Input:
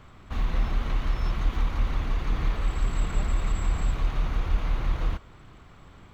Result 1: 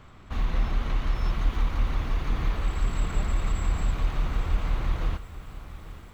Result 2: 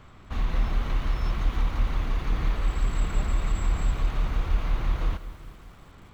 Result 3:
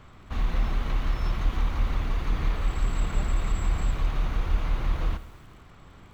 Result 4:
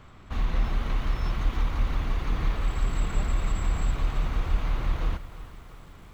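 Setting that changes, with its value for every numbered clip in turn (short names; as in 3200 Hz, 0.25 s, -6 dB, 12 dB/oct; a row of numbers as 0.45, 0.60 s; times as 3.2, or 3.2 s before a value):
lo-fi delay, time: 838, 195, 81, 335 ms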